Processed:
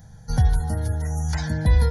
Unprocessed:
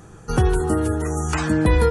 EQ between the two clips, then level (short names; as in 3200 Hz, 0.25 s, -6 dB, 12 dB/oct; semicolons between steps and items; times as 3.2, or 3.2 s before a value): tone controls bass +8 dB, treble +10 dB; fixed phaser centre 1800 Hz, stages 8; -6.0 dB